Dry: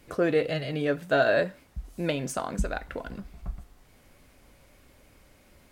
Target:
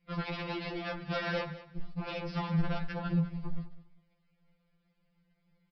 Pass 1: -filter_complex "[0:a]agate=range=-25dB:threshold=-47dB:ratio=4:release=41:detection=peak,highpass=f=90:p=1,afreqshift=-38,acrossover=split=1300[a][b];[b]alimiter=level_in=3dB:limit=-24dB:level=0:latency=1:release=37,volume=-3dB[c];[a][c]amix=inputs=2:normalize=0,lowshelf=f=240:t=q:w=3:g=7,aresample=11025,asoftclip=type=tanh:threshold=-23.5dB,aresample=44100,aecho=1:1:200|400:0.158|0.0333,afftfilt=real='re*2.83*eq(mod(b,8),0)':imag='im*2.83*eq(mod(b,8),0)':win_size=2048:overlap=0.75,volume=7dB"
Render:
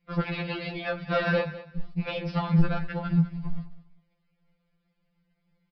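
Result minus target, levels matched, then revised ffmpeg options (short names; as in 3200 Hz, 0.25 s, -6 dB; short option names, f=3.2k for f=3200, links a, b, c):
soft clip: distortion -7 dB
-filter_complex "[0:a]agate=range=-25dB:threshold=-47dB:ratio=4:release=41:detection=peak,highpass=f=90:p=1,afreqshift=-38,acrossover=split=1300[a][b];[b]alimiter=level_in=3dB:limit=-24dB:level=0:latency=1:release=37,volume=-3dB[c];[a][c]amix=inputs=2:normalize=0,lowshelf=f=240:t=q:w=3:g=7,aresample=11025,asoftclip=type=tanh:threshold=-35dB,aresample=44100,aecho=1:1:200|400:0.158|0.0333,afftfilt=real='re*2.83*eq(mod(b,8),0)':imag='im*2.83*eq(mod(b,8),0)':win_size=2048:overlap=0.75,volume=7dB"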